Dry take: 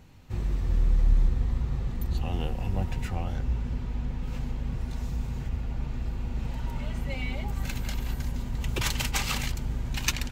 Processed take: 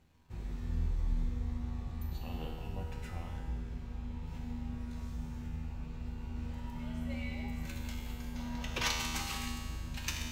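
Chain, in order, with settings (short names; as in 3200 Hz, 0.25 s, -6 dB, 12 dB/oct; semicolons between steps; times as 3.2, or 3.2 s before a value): spectral gain 8.35–8.95, 460–6700 Hz +8 dB; crossover distortion -58 dBFS; resonator 80 Hz, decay 1.9 s, harmonics all, mix 90%; on a send: reverb RT60 0.70 s, pre-delay 3 ms, DRR 14 dB; on the sum: gain +6 dB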